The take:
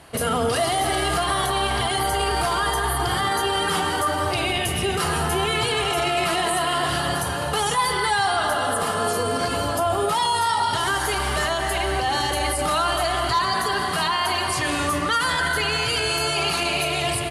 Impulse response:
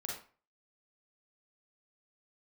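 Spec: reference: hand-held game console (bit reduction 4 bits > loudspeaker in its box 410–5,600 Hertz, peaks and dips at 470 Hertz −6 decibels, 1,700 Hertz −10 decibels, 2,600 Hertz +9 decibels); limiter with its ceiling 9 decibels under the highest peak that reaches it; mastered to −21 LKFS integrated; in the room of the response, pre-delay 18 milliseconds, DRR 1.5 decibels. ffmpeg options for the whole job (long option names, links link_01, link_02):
-filter_complex "[0:a]alimiter=limit=-19.5dB:level=0:latency=1,asplit=2[link_01][link_02];[1:a]atrim=start_sample=2205,adelay=18[link_03];[link_02][link_03]afir=irnorm=-1:irlink=0,volume=-1.5dB[link_04];[link_01][link_04]amix=inputs=2:normalize=0,acrusher=bits=3:mix=0:aa=0.000001,highpass=410,equalizer=frequency=470:width_type=q:width=4:gain=-6,equalizer=frequency=1700:width_type=q:width=4:gain=-10,equalizer=frequency=2600:width_type=q:width=4:gain=9,lowpass=frequency=5600:width=0.5412,lowpass=frequency=5600:width=1.3066,volume=3dB"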